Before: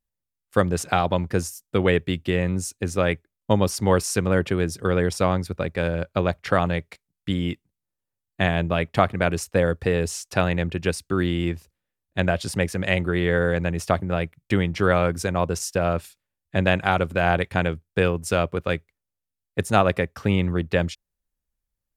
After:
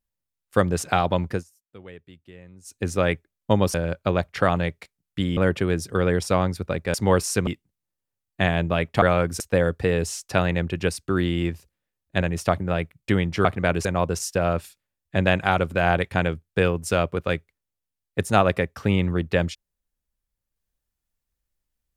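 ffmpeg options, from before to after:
-filter_complex "[0:a]asplit=12[a][b][c][d][e][f][g][h][i][j][k][l];[a]atrim=end=1.44,asetpts=PTS-STARTPTS,afade=t=out:st=1.31:d=0.13:silence=0.0707946[m];[b]atrim=start=1.44:end=2.64,asetpts=PTS-STARTPTS,volume=-23dB[n];[c]atrim=start=2.64:end=3.742,asetpts=PTS-STARTPTS,afade=t=in:d=0.13:silence=0.0707946[o];[d]atrim=start=5.838:end=7.472[p];[e]atrim=start=4.268:end=5.842[q];[f]atrim=start=3.738:end=4.272[r];[g]atrim=start=7.468:end=9.022[s];[h]atrim=start=14.868:end=15.252[t];[i]atrim=start=9.418:end=12.242[u];[j]atrim=start=13.638:end=14.872[v];[k]atrim=start=9.018:end=9.422[w];[l]atrim=start=15.248[x];[m][n][o]concat=n=3:v=0:a=1[y];[y][p]acrossfade=d=0.004:c1=hsin:c2=hsin[z];[z][q]acrossfade=d=0.004:c1=hsin:c2=hsin[aa];[aa][r]acrossfade=d=0.004:c1=hsin:c2=hsin[ab];[ab][s]acrossfade=d=0.004:c1=hsin:c2=hsin[ac];[ac][t]acrossfade=d=0.004:c1=hsin:c2=hsin[ad];[ad][u]acrossfade=d=0.004:c1=hsin:c2=hsin[ae];[ae][v]acrossfade=d=0.004:c1=hsin:c2=hsin[af];[af][w]acrossfade=d=0.004:c1=hsin:c2=hsin[ag];[ag][x]acrossfade=d=0.004:c1=hsin:c2=hsin"

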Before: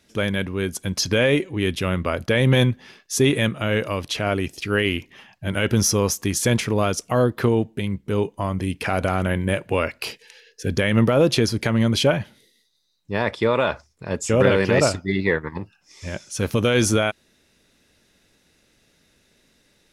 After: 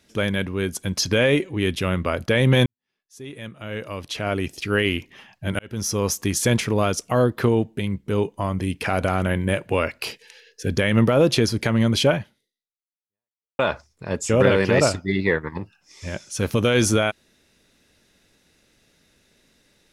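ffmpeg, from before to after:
-filter_complex "[0:a]asplit=4[a][b][c][d];[a]atrim=end=2.66,asetpts=PTS-STARTPTS,afade=t=out:st=2.656:d=0.004:c=hsin[e];[b]atrim=start=2.66:end=5.59,asetpts=PTS-STARTPTS,afade=t=in:d=1.85:c=qua,afade=t=out:st=2.926:d=0.004:c=hsin[f];[c]atrim=start=5.59:end=13.59,asetpts=PTS-STARTPTS,afade=t=in:d=0.57,afade=t=out:st=6.56:d=1.44:c=exp[g];[d]atrim=start=13.59,asetpts=PTS-STARTPTS,afade=t=in:d=0.004:c=hsin[h];[e][f][g][h]concat=n=4:v=0:a=1"

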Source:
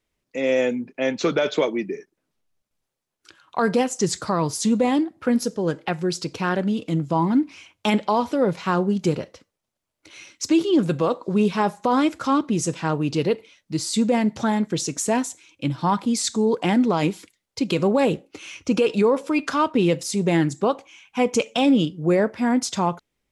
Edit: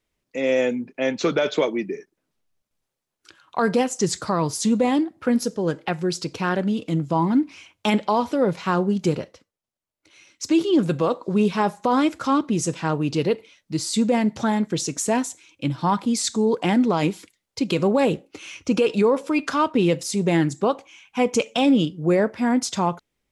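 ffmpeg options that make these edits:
-filter_complex "[0:a]asplit=3[a][b][c];[a]atrim=end=9.52,asetpts=PTS-STARTPTS,afade=t=out:st=9.19:d=0.33:silence=0.375837[d];[b]atrim=start=9.52:end=10.25,asetpts=PTS-STARTPTS,volume=-8.5dB[e];[c]atrim=start=10.25,asetpts=PTS-STARTPTS,afade=t=in:d=0.33:silence=0.375837[f];[d][e][f]concat=n=3:v=0:a=1"

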